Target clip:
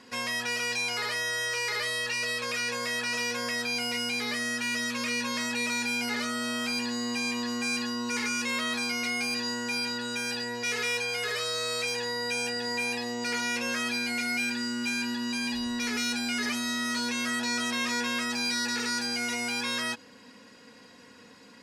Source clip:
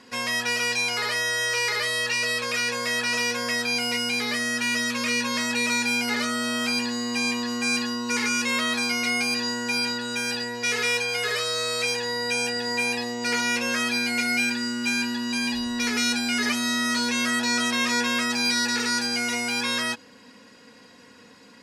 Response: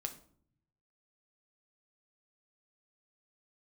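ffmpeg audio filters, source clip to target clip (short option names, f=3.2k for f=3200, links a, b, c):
-filter_complex "[0:a]asplit=2[a][b];[b]alimiter=limit=-22.5dB:level=0:latency=1:release=100,volume=0dB[c];[a][c]amix=inputs=2:normalize=0,asoftclip=type=tanh:threshold=-12dB,volume=-8dB"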